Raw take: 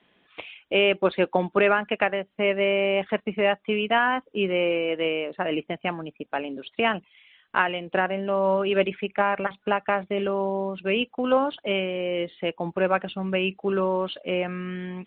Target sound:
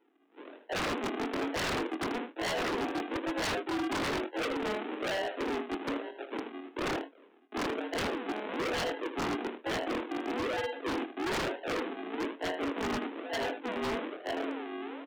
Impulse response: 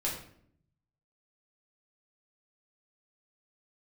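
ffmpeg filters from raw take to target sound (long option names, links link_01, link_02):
-filter_complex "[0:a]afftfilt=real='re':imag='-im':win_size=2048:overlap=0.75,adynamicequalizer=threshold=0.00708:dfrequency=1400:dqfactor=2.1:tfrequency=1400:tqfactor=2.1:attack=5:release=100:ratio=0.375:range=2.5:mode=boostabove:tftype=bell,aresample=8000,acrusher=samples=13:mix=1:aa=0.000001:lfo=1:lforange=13:lforate=1.1,aresample=44100,highpass=frequency=160:width_type=q:width=0.5412,highpass=frequency=160:width_type=q:width=1.307,lowpass=frequency=3100:width_type=q:width=0.5176,lowpass=frequency=3100:width_type=q:width=0.7071,lowpass=frequency=3100:width_type=q:width=1.932,afreqshift=110,asplit=2[link_01][link_02];[link_02]adelay=25,volume=-8.5dB[link_03];[link_01][link_03]amix=inputs=2:normalize=0,asplit=2[link_04][link_05];[link_05]aecho=0:1:79:0.335[link_06];[link_04][link_06]amix=inputs=2:normalize=0,aeval=exprs='0.0447*(abs(mod(val(0)/0.0447+3,4)-2)-1)':channel_layout=same"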